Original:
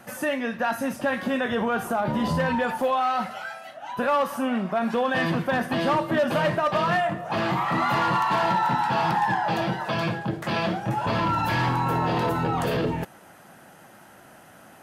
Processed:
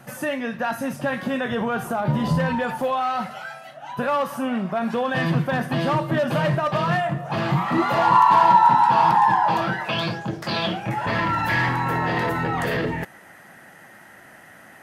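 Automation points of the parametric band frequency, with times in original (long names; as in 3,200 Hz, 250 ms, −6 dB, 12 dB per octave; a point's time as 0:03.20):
parametric band +13.5 dB 0.35 octaves
0:07.54 140 Hz
0:08.11 980 Hz
0:09.56 980 Hz
0:10.25 7,000 Hz
0:10.98 1,900 Hz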